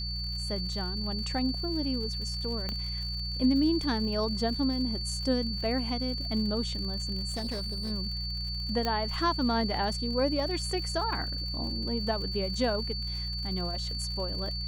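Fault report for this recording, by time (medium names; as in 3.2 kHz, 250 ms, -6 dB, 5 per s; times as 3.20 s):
crackle 110 per s -39 dBFS
hum 60 Hz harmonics 3 -36 dBFS
whine 4.5 kHz -35 dBFS
2.69 s: pop -19 dBFS
7.29–7.92 s: clipped -29.5 dBFS
8.85 s: pop -16 dBFS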